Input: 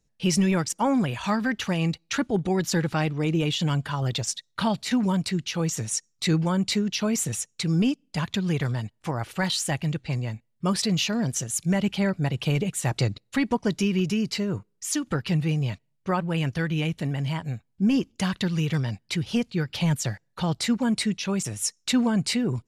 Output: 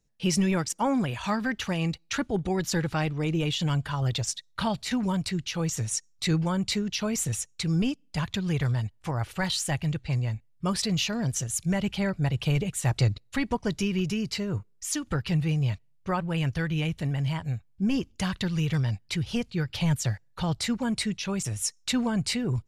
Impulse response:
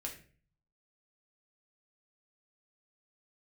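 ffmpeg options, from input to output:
-af "asubboost=boost=4:cutoff=100,volume=-2dB"

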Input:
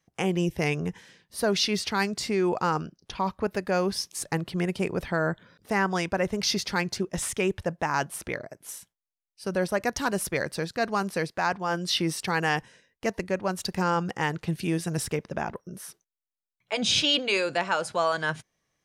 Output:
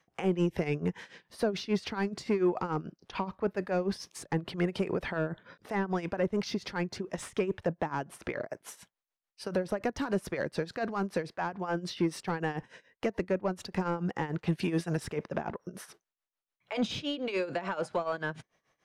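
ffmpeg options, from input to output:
ffmpeg -i in.wav -filter_complex "[0:a]tremolo=f=6.9:d=0.84,asplit=2[link_01][link_02];[link_02]asoftclip=type=tanh:threshold=-28.5dB,volume=-3.5dB[link_03];[link_01][link_03]amix=inputs=2:normalize=0,acrossover=split=410[link_04][link_05];[link_05]acompressor=threshold=-36dB:ratio=10[link_06];[link_04][link_06]amix=inputs=2:normalize=0,asplit=2[link_07][link_08];[link_08]highpass=frequency=720:poles=1,volume=13dB,asoftclip=type=tanh:threshold=-15.5dB[link_09];[link_07][link_09]amix=inputs=2:normalize=0,lowpass=frequency=1400:poles=1,volume=-6dB" out.wav

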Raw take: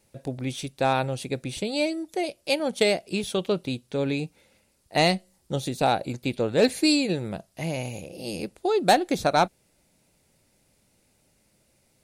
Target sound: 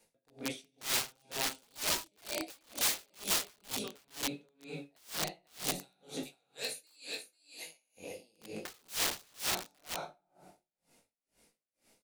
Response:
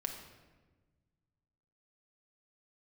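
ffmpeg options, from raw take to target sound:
-filter_complex "[0:a]asettb=1/sr,asplit=3[link_01][link_02][link_03];[link_01]atrim=end=5.724[link_04];[link_02]atrim=start=5.72:end=7.97,asetpts=PTS-STARTPTS,afade=type=in:duration=0.004:curve=qsin,afade=type=out:start_time=2.246:duration=0.004:curve=qsin,aderivative[link_05];[link_03]atrim=start=7.966[link_06];[link_04][link_05]acrossfade=duration=0.004:curve1=hsin:curve2=qsin[link_07];[link_07][link_06]acrossfade=duration=0.004:curve1=qsin:curve2=hsin,aecho=1:1:493:0.473[link_08];[1:a]atrim=start_sample=2205,asetrate=52920,aresample=44100[link_09];[link_08][link_09]afir=irnorm=-1:irlink=0,flanger=delay=18.5:depth=3.2:speed=1.3,aeval=exprs='(mod(20*val(0)+1,2)-1)/20':channel_layout=same,bass=frequency=250:gain=-12,treble=frequency=4000:gain=0,acrossover=split=240|3000[link_10][link_11][link_12];[link_11]acompressor=threshold=-40dB:ratio=6[link_13];[link_10][link_13][link_12]amix=inputs=3:normalize=0,aeval=exprs='val(0)*pow(10,-37*(0.5-0.5*cos(2*PI*2.1*n/s))/20)':channel_layout=same,volume=5dB"

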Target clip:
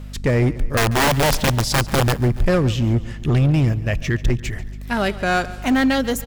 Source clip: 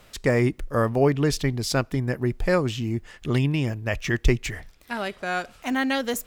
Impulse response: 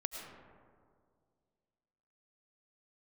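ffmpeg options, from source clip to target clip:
-filter_complex "[0:a]lowshelf=frequency=180:gain=9.5,asplit=2[link_01][link_02];[link_02]alimiter=limit=-10.5dB:level=0:latency=1:release=221,volume=-2.5dB[link_03];[link_01][link_03]amix=inputs=2:normalize=0,dynaudnorm=framelen=150:gausssize=7:maxgain=7.5dB,asettb=1/sr,asplit=3[link_04][link_05][link_06];[link_04]atrim=end=0.774[link_07];[link_05]atrim=start=0.77:end=2.14,asetpts=PTS-STARTPTS,afade=type=in:duration=0.004:curve=qsin,afade=type=out:start_time=1.366:duration=0.004:curve=qsin,aeval=exprs='(mod(2.51*val(0)+1,2)-1)/2.51':channel_layout=same[link_08];[link_06]atrim=start=2.136[link_09];[link_07][link_08]acrossfade=duration=0.004:curve1=hsin:curve2=qsin[link_10];[link_10][link_09]acrossfade=duration=0.004:curve1=qsin:curve2=hsin,aeval=exprs='val(0)+0.0316*(sin(2*PI*50*n/s)+sin(2*PI*2*50*n/s)/2+sin(2*PI*3*50*n/s)/3+sin(2*PI*4*50*n/s)/4+sin(2*PI*5*50*n/s)/5)':channel_layout=same,asoftclip=type=hard:threshold=-10dB,asplit=2[link_11][link_12];[link_12]aecho=0:1:141|282|423|564:0.126|0.0655|0.034|0.0177[link_13];[link_11][link_13]amix=inputs=2:normalize=0,volume=-2.5dB"

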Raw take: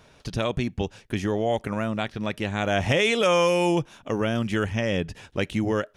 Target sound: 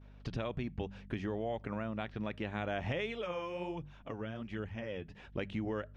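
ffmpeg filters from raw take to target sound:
ffmpeg -i in.wav -filter_complex "[0:a]lowpass=3000,agate=range=-33dB:threshold=-48dB:ratio=3:detection=peak,bandreject=frequency=49.13:width_type=h:width=4,bandreject=frequency=98.26:width_type=h:width=4,bandreject=frequency=147.39:width_type=h:width=4,bandreject=frequency=196.52:width_type=h:width=4,acompressor=threshold=-34dB:ratio=3,aeval=exprs='val(0)+0.00282*(sin(2*PI*50*n/s)+sin(2*PI*2*50*n/s)/2+sin(2*PI*3*50*n/s)/3+sin(2*PI*4*50*n/s)/4+sin(2*PI*5*50*n/s)/5)':channel_layout=same,asplit=3[link_01][link_02][link_03];[link_01]afade=type=out:start_time=3.05:duration=0.02[link_04];[link_02]flanger=delay=0.2:depth=8.6:regen=36:speed=1.3:shape=sinusoidal,afade=type=in:start_time=3.05:duration=0.02,afade=type=out:start_time=5.37:duration=0.02[link_05];[link_03]afade=type=in:start_time=5.37:duration=0.02[link_06];[link_04][link_05][link_06]amix=inputs=3:normalize=0,volume=-2.5dB" out.wav

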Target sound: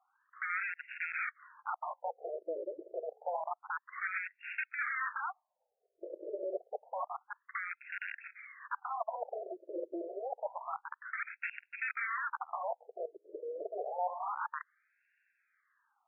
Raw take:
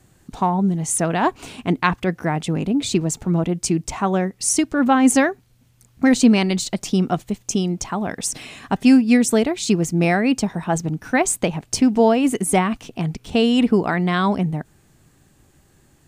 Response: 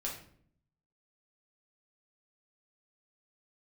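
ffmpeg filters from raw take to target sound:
-af "aeval=exprs='(mod(7.08*val(0)+1,2)-1)/7.08':channel_layout=same,afftfilt=real='re*between(b*sr/1024,450*pow(2000/450,0.5+0.5*sin(2*PI*0.28*pts/sr))/1.41,450*pow(2000/450,0.5+0.5*sin(2*PI*0.28*pts/sr))*1.41)':imag='im*between(b*sr/1024,450*pow(2000/450,0.5+0.5*sin(2*PI*0.28*pts/sr))/1.41,450*pow(2000/450,0.5+0.5*sin(2*PI*0.28*pts/sr))*1.41)':win_size=1024:overlap=0.75,volume=-7dB"

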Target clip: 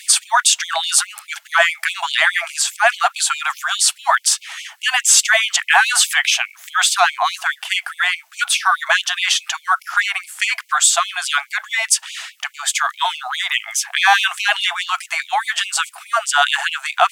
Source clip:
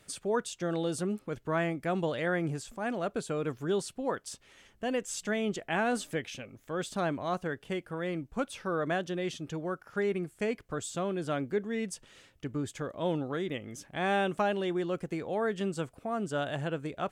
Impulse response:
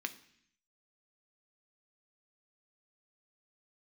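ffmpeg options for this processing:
-af "apsyclip=30.5dB,afftfilt=real='re*gte(b*sr/1024,640*pow(2200/640,0.5+0.5*sin(2*PI*4.8*pts/sr)))':imag='im*gte(b*sr/1024,640*pow(2200/640,0.5+0.5*sin(2*PI*4.8*pts/sr)))':win_size=1024:overlap=0.75,volume=-3dB"

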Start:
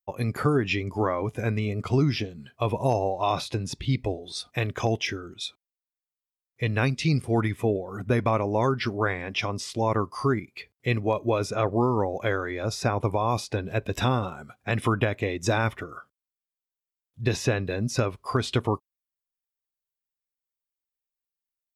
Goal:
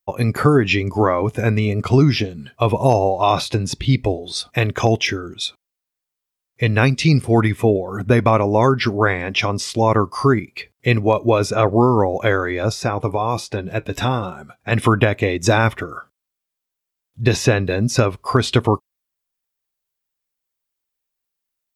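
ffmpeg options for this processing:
ffmpeg -i in.wav -filter_complex "[0:a]asettb=1/sr,asplit=3[link_01][link_02][link_03];[link_01]atrim=end=12.724[link_04];[link_02]atrim=start=12.72:end=14.72,asetpts=PTS-STARTPTS,afade=type=in:duration=0.004:curve=qsin,afade=type=out:start_time=1.996:duration=0.004:curve=qsin,flanger=delay=5:depth=2.2:regen=67:speed=1.2:shape=triangular[link_05];[link_03]atrim=start=14.716[link_06];[link_04][link_05]acrossfade=duration=0.004:curve1=hsin:curve2=qsin[link_07];[link_07][link_06]acrossfade=duration=0.004:curve1=qsin:curve2=hsin,volume=9dB" out.wav

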